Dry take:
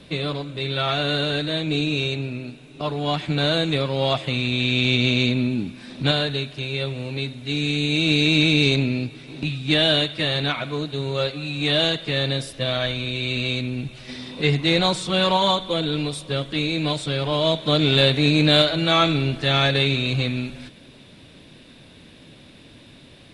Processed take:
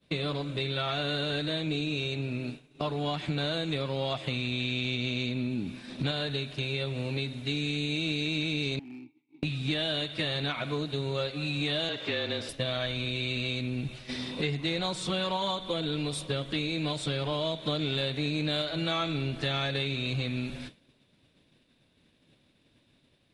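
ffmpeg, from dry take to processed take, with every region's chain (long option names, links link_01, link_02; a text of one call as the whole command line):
ffmpeg -i in.wav -filter_complex "[0:a]asettb=1/sr,asplit=3[link_01][link_02][link_03];[link_01]atrim=end=8.794[link_04];[link_02]atrim=start=8.79:end=9.43,asetpts=PTS-STARTPTS,afade=type=in:duration=0.004:curve=qsin,afade=type=out:start_time=0.636:duration=0.004:curve=qsin,acompressor=threshold=-26dB:ratio=2:attack=3.2:release=140:knee=1:detection=peak,asplit=3[link_05][link_06][link_07];[link_05]bandpass=frequency=300:width_type=q:width=8,volume=0dB[link_08];[link_06]bandpass=frequency=870:width_type=q:width=8,volume=-6dB[link_09];[link_07]bandpass=frequency=2240:width_type=q:width=8,volume=-9dB[link_10];[link_08][link_09][link_10]amix=inputs=3:normalize=0,asoftclip=type=hard:threshold=-35dB[link_11];[link_03]atrim=start=9.426[link_12];[link_04][link_11]acrossfade=duration=0.004:curve1=hsin:curve2=qsin[link_13];[link_13][link_12]acrossfade=duration=0.004:curve1=qsin:curve2=hsin,asettb=1/sr,asplit=3[link_14][link_15][link_16];[link_14]atrim=end=11.894[link_17];[link_15]atrim=start=11.89:end=12.49,asetpts=PTS-STARTPTS,afade=type=in:duration=0.004:curve=qsin,afade=type=out:start_time=0.596:duration=0.004:curve=qsin,aeval=exprs='val(0)+0.5*0.0188*sgn(val(0))':channel_layout=same,highpass=260,lowpass=3900,afreqshift=-29[link_18];[link_16]atrim=start=12.486[link_19];[link_17][link_18]acrossfade=duration=0.004:curve1=hsin:curve2=qsin[link_20];[link_20][link_19]acrossfade=duration=0.004:curve1=qsin:curve2=hsin,agate=range=-33dB:threshold=-34dB:ratio=3:detection=peak,acompressor=threshold=-28dB:ratio=6" out.wav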